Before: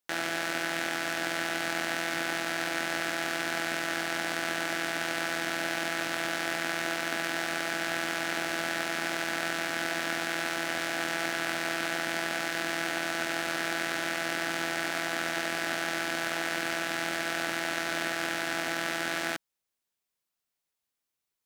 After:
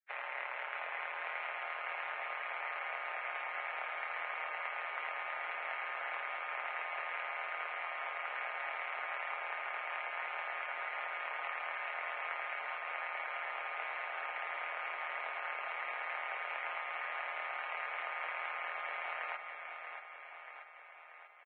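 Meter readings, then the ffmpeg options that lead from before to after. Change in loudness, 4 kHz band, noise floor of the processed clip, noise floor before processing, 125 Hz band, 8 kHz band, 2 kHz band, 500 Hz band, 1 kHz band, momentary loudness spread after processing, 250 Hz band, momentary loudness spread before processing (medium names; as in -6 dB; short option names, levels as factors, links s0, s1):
-8.5 dB, -18.0 dB, -52 dBFS, under -85 dBFS, under -40 dB, under -40 dB, -8.5 dB, -12.5 dB, -4.5 dB, 1 LU, under -35 dB, 0 LU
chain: -af "afftfilt=real='re*lt(hypot(re,im),0.0631)':imag='im*lt(hypot(re,im),0.0631)':win_size=1024:overlap=0.75,tremolo=f=130:d=0.919,highpass=f=490:t=q:w=0.5412,highpass=f=490:t=q:w=1.307,lowpass=f=2300:t=q:w=0.5176,lowpass=f=2300:t=q:w=0.7071,lowpass=f=2300:t=q:w=1.932,afreqshift=68,aecho=1:1:635|1270|1905|2540|3175|3810|4445|5080:0.447|0.268|0.161|0.0965|0.0579|0.0347|0.0208|0.0125,volume=1.12" -ar 22050 -c:a libvorbis -b:a 16k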